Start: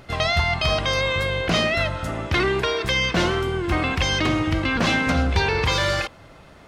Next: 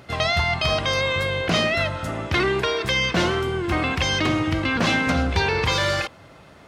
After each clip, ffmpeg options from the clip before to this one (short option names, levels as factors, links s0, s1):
-af "highpass=69"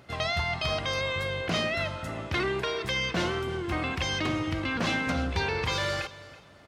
-af "aecho=1:1:329|658:0.126|0.034,volume=0.422"